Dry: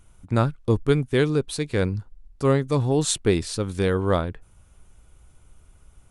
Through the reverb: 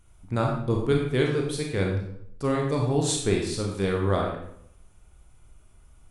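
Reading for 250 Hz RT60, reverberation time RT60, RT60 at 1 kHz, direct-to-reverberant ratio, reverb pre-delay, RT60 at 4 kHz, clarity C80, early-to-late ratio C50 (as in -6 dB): 0.75 s, 0.70 s, 0.65 s, -0.5 dB, 28 ms, 0.55 s, 6.5 dB, 3.5 dB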